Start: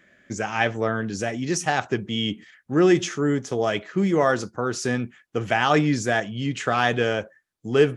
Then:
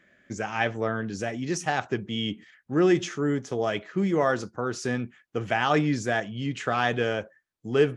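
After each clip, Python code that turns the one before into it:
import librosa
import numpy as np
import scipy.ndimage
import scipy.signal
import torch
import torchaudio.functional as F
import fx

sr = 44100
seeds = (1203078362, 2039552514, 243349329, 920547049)

y = fx.high_shelf(x, sr, hz=7100.0, db=-6.5)
y = F.gain(torch.from_numpy(y), -3.5).numpy()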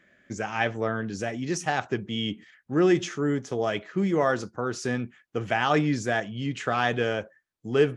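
y = x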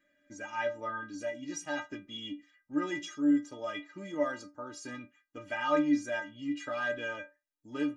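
y = fx.stiff_resonator(x, sr, f0_hz=290.0, decay_s=0.24, stiffness=0.008)
y = F.gain(torch.from_numpy(y), 4.5).numpy()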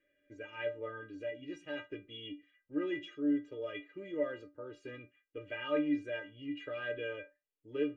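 y = fx.curve_eq(x, sr, hz=(120.0, 230.0, 450.0, 780.0, 2800.0, 5400.0), db=(0, -13, 9, -17, 0, -25))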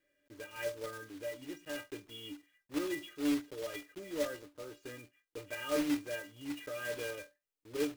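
y = fx.block_float(x, sr, bits=3)
y = F.gain(torch.from_numpy(y), -1.0).numpy()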